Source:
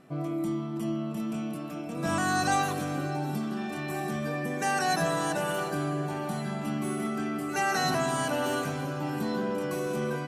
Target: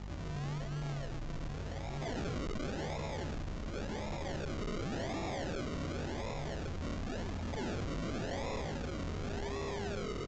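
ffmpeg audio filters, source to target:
ffmpeg -i in.wav -filter_complex "[0:a]highpass=frequency=350:poles=1,equalizer=frequency=530:width=0.42:gain=-4.5,acrossover=split=680|1200[link_01][link_02][link_03];[link_01]acompressor=mode=upward:threshold=-46dB:ratio=2.5[link_04];[link_04][link_02][link_03]amix=inputs=3:normalize=0,aecho=1:1:295:0.224,afreqshift=-240,asetrate=70004,aresample=44100,atempo=0.629961,aeval=exprs='val(0)+0.00562*(sin(2*PI*50*n/s)+sin(2*PI*2*50*n/s)/2+sin(2*PI*3*50*n/s)/3+sin(2*PI*4*50*n/s)/4+sin(2*PI*5*50*n/s)/5)':channel_layout=same,acrusher=samples=41:mix=1:aa=0.000001:lfo=1:lforange=24.6:lforate=0.91,asoftclip=type=hard:threshold=-39dB,aresample=16000,aresample=44100,volume=3dB" out.wav

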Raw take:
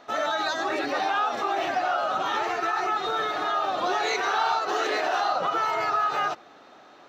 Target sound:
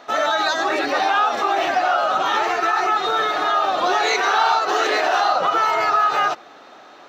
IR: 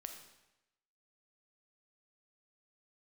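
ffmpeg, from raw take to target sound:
-af "lowshelf=frequency=230:gain=-7.5,volume=7.5dB"

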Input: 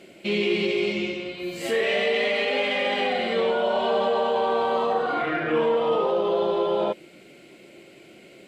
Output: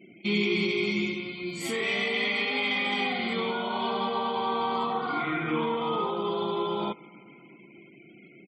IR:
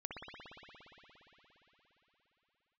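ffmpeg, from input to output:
-filter_complex "[0:a]asplit=2[link_01][link_02];[link_02]highshelf=frequency=2100:gain=6.5[link_03];[1:a]atrim=start_sample=2205[link_04];[link_03][link_04]afir=irnorm=-1:irlink=0,volume=-21.5dB[link_05];[link_01][link_05]amix=inputs=2:normalize=0,afftfilt=real='re*gte(hypot(re,im),0.00501)':imag='im*gte(hypot(re,im),0.00501)':win_size=1024:overlap=0.75,highpass=130,equalizer=frequency=990:width=0.32:gain=-6,aecho=1:1:0.9:0.79"

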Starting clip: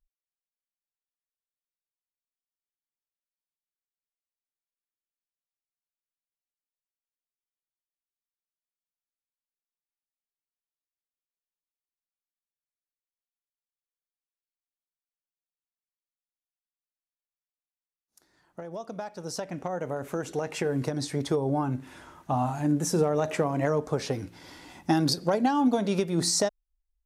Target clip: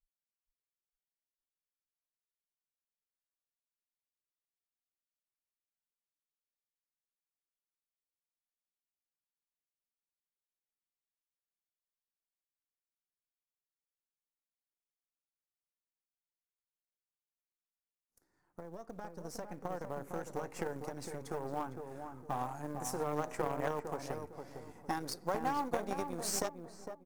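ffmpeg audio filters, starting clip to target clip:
ffmpeg -i in.wav -filter_complex "[0:a]aeval=exprs='if(lt(val(0),0),0.447*val(0),val(0))':channel_layout=same,equalizer=frequency=3400:width=1.1:gain=-13,bandreject=frequency=640:width=12,acrossover=split=510[link_01][link_02];[link_01]acompressor=threshold=-38dB:ratio=16[link_03];[link_03][link_02]amix=inputs=2:normalize=0,asoftclip=type=tanh:threshold=-23.5dB,asplit=2[link_04][link_05];[link_05]adelay=456,lowpass=frequency=1100:poles=1,volume=-4dB,asplit=2[link_06][link_07];[link_07]adelay=456,lowpass=frequency=1100:poles=1,volume=0.38,asplit=2[link_08][link_09];[link_09]adelay=456,lowpass=frequency=1100:poles=1,volume=0.38,asplit=2[link_10][link_11];[link_11]adelay=456,lowpass=frequency=1100:poles=1,volume=0.38,asplit=2[link_12][link_13];[link_13]adelay=456,lowpass=frequency=1100:poles=1,volume=0.38[link_14];[link_06][link_08][link_10][link_12][link_14]amix=inputs=5:normalize=0[link_15];[link_04][link_15]amix=inputs=2:normalize=0,acrusher=bits=8:mode=log:mix=0:aa=0.000001,aeval=exprs='0.075*(cos(1*acos(clip(val(0)/0.075,-1,1)))-cos(1*PI/2))+0.015*(cos(3*acos(clip(val(0)/0.075,-1,1)))-cos(3*PI/2))':channel_layout=same,volume=1.5dB" out.wav

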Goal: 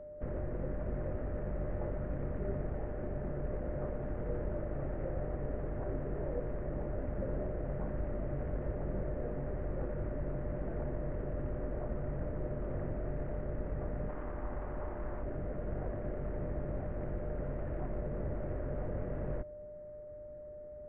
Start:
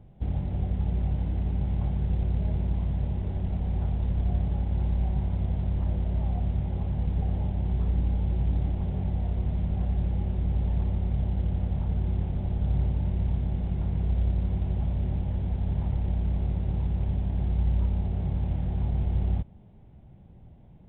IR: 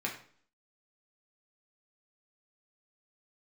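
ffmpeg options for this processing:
-filter_complex "[0:a]highpass=frequency=220:width_type=q:width=0.5412,highpass=frequency=220:width_type=q:width=1.307,lowpass=frequency=2000:width_type=q:width=0.5176,lowpass=frequency=2000:width_type=q:width=0.7071,lowpass=frequency=2000:width_type=q:width=1.932,afreqshift=-230,aeval=exprs='val(0)+0.00282*sin(2*PI*600*n/s)':channel_layout=same,asettb=1/sr,asplit=3[link_01][link_02][link_03];[link_01]atrim=end=14.094[link_04];[link_02]atrim=start=14.09:end=15.23,asetpts=PTS-STARTPTS,afade=type=in:duration=0.004:curve=qsin,afade=type=out:start_time=1.136:duration=0.004:curve=qsin,equalizer=frequency=125:width_type=o:width=1:gain=-10,equalizer=frequency=500:width_type=o:width=1:gain=-5,equalizer=frequency=1000:width_type=o:width=1:gain=9[link_05];[link_03]atrim=start=15.226[link_06];[link_04][link_05]acrossfade=duration=0.004:curve1=hsin:curve2=qsin[link_07];[link_07][link_06]acrossfade=duration=0.004:curve1=qsin:curve2=hsin,volume=5.5dB"

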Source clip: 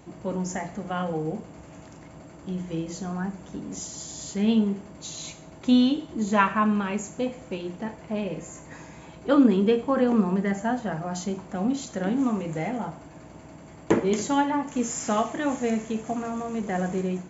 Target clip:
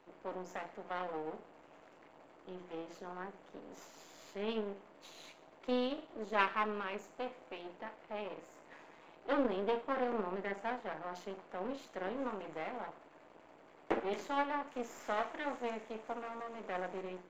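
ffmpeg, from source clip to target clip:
ffmpeg -i in.wav -filter_complex "[0:a]aeval=exprs='max(val(0),0)':channel_layout=same,acrossover=split=300 4000:gain=0.112 1 0.126[link_01][link_02][link_03];[link_01][link_02][link_03]amix=inputs=3:normalize=0,volume=-6dB" out.wav

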